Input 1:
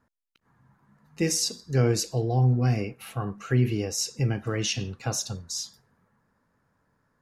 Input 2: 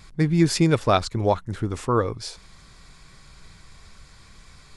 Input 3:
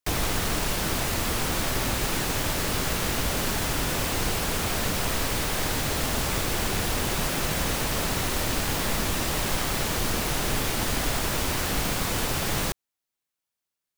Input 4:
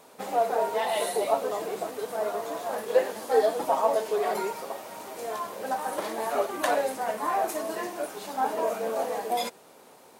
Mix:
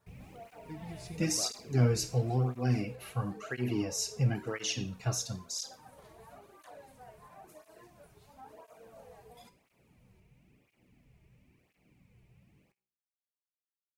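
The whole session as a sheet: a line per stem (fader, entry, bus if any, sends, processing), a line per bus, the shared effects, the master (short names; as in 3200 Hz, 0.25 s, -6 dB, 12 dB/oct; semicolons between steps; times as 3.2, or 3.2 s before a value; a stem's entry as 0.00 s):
+2.5 dB, 0.00 s, no send, dry
-18.0 dB, 0.50 s, no send, dry
2.31 s -11 dB -> 3.04 s -23.5 dB, 0.00 s, no send, EQ curve 160 Hz 0 dB, 1500 Hz -22 dB, 2400 Hz -6 dB, 3500 Hz -22 dB
-16.5 dB, 0.00 s, no send, limiter -19.5 dBFS, peak gain reduction 9 dB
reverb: off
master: resonator 62 Hz, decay 0.37 s, harmonics all, mix 60%; tape flanging out of phase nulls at 0.98 Hz, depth 4.1 ms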